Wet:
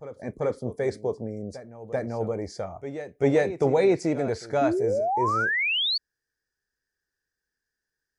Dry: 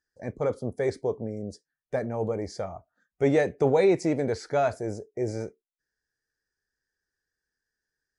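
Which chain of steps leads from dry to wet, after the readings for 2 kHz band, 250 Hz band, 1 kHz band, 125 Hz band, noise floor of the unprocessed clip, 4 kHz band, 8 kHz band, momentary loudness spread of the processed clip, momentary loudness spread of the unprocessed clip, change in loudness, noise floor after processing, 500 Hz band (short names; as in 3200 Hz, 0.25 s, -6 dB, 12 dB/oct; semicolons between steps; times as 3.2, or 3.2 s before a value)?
+9.5 dB, +1.0 dB, +5.5 dB, +0.5 dB, under -85 dBFS, +17.5 dB, 0.0 dB, 13 LU, 15 LU, +2.0 dB, under -85 dBFS, +1.0 dB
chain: reverse echo 0.389 s -13 dB; painted sound rise, 4.61–5.98, 270–4600 Hz -25 dBFS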